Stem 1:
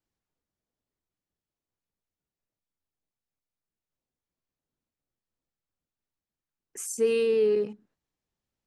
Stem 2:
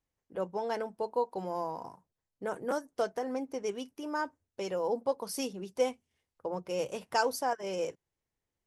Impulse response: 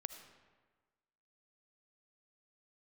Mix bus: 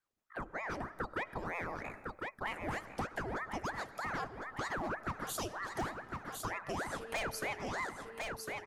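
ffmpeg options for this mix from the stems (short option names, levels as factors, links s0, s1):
-filter_complex "[0:a]acompressor=threshold=0.0316:ratio=6,volume=0.299,asplit=2[s0][s1];[s1]volume=0.398[s2];[1:a]dynaudnorm=f=490:g=3:m=3.16,volume=6.68,asoftclip=hard,volume=0.15,aeval=exprs='val(0)*sin(2*PI*850*n/s+850*0.85/3.2*sin(2*PI*3.2*n/s))':c=same,volume=0.631,asplit=3[s3][s4][s5];[s4]volume=0.631[s6];[s5]volume=0.398[s7];[2:a]atrim=start_sample=2205[s8];[s6][s8]afir=irnorm=-1:irlink=0[s9];[s2][s7]amix=inputs=2:normalize=0,aecho=0:1:1054|2108|3162|4216|5270:1|0.39|0.152|0.0593|0.0231[s10];[s0][s3][s9][s10]amix=inputs=4:normalize=0,acompressor=threshold=0.0112:ratio=3"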